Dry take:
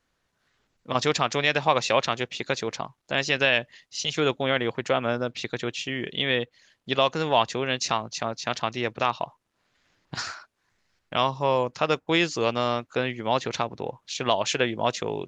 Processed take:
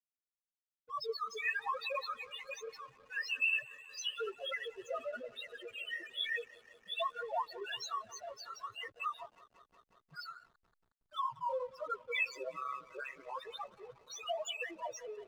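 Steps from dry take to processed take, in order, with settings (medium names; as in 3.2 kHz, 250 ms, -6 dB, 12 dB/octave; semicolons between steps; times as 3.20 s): tilt shelf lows -9.5 dB, about 770 Hz; 8.15–8.62 s: hard clipper -17.5 dBFS, distortion -27 dB; loudest bins only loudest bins 1; flange 1.1 Hz, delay 1.9 ms, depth 9.9 ms, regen -52%; 12.29–13.33 s: ring modulator 67 Hz; on a send: bucket-brigade echo 181 ms, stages 4096, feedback 84%, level -21 dB; on the sum: hysteresis with a dead band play -56 dBFS; trim +1 dB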